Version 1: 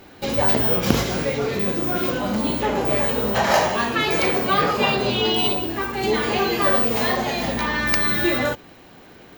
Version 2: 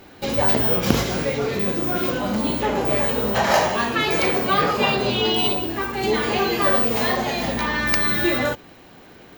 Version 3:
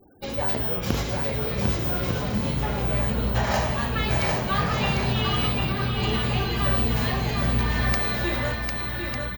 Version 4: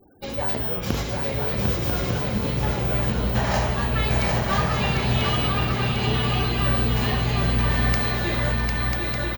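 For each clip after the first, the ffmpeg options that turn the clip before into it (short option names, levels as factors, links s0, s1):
-af anull
-af "aecho=1:1:750|1200|1470|1632|1729:0.631|0.398|0.251|0.158|0.1,afftfilt=real='re*gte(hypot(re,im),0.0112)':imag='im*gte(hypot(re,im),0.0112)':win_size=1024:overlap=0.75,asubboost=boost=9.5:cutoff=120,volume=0.447"
-af "aecho=1:1:992:0.596"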